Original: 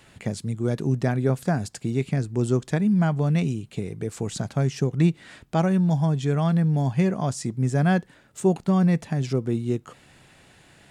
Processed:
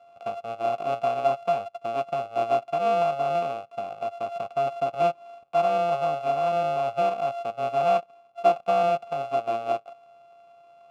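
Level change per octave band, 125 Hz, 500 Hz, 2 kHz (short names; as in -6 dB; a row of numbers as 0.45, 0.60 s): -22.0, +4.5, -3.5 dB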